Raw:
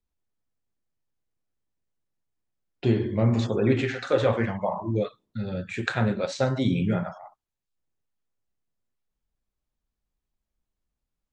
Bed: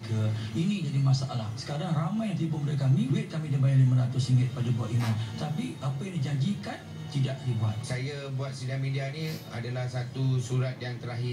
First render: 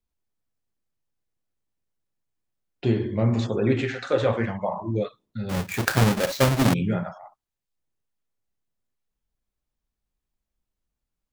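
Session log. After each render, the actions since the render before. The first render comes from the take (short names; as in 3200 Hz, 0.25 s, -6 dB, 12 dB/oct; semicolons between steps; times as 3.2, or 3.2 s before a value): 5.49–6.74 half-waves squared off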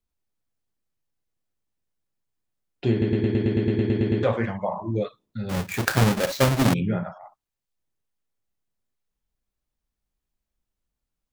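2.91 stutter in place 0.11 s, 12 plays; 6.8–7.21 air absorption 170 m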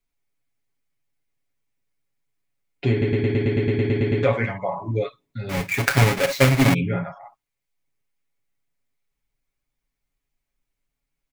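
bell 2200 Hz +9.5 dB 0.38 oct; comb 7.2 ms, depth 72%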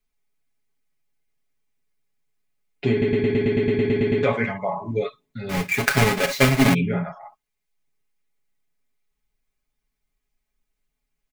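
comb 4.7 ms, depth 49%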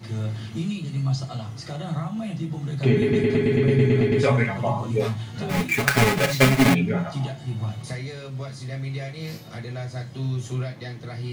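add bed 0 dB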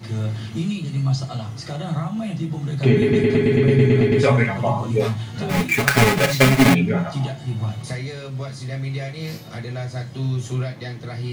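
gain +3.5 dB; limiter -2 dBFS, peak gain reduction 2 dB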